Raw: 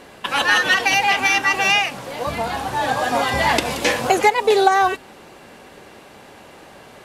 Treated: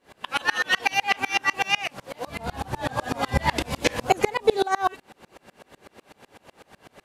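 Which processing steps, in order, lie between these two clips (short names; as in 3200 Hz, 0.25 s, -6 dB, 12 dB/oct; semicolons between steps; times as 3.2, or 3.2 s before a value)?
2.39–4.57 low shelf 190 Hz +11.5 dB; dB-ramp tremolo swelling 8 Hz, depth 30 dB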